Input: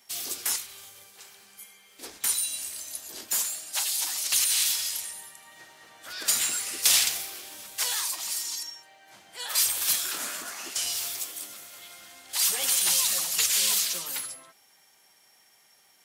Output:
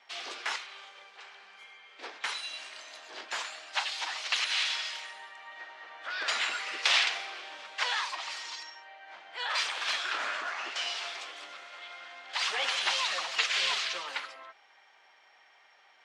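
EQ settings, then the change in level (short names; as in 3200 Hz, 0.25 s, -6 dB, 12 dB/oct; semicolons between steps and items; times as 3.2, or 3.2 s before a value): BPF 670–2800 Hz; air absorption 84 m; +7.5 dB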